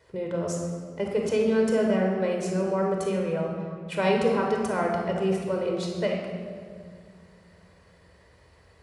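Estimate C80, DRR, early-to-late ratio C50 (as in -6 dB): 4.0 dB, 0.0 dB, 2.0 dB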